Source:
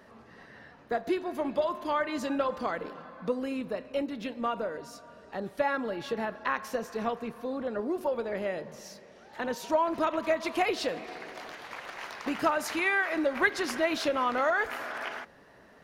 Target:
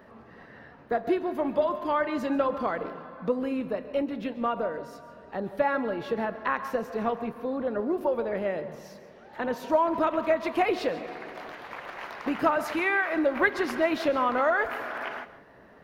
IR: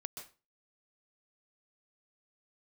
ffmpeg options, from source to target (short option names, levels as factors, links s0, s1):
-filter_complex "[0:a]equalizer=f=7400:t=o:w=2.1:g=-12,asplit=2[s0][s1];[1:a]atrim=start_sample=2205,asetrate=41454,aresample=44100[s2];[s1][s2]afir=irnorm=-1:irlink=0,volume=0.75[s3];[s0][s3]amix=inputs=2:normalize=0"